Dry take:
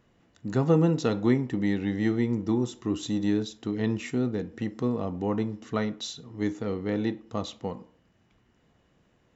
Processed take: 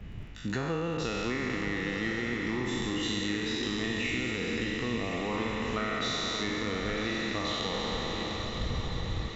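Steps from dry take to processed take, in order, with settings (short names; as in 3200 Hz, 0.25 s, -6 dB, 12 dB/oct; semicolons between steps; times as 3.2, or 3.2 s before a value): spectral trails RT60 2.99 s; wind noise 97 Hz -36 dBFS; bell 2500 Hz +13.5 dB 1.7 oct; compressor 6:1, threshold -30 dBFS, peak gain reduction 15.5 dB; hum 50 Hz, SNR 17 dB; on a send: diffused feedback echo 1.019 s, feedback 56%, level -7 dB; on the sum: crackle 11/s -51 dBFS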